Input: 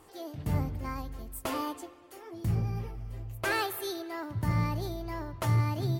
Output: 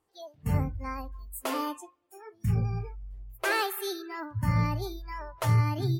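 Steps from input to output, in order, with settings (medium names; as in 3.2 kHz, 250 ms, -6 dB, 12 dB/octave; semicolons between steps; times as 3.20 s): Chebyshev shaper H 3 -27 dB, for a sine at -16.5 dBFS; spectral noise reduction 23 dB; trim +3.5 dB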